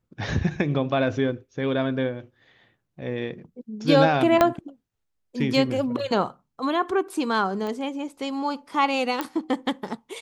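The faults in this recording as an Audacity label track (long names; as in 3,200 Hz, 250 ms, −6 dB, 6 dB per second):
4.410000	4.410000	click −5 dBFS
7.670000	7.670000	click −20 dBFS
9.210000	9.210000	click −12 dBFS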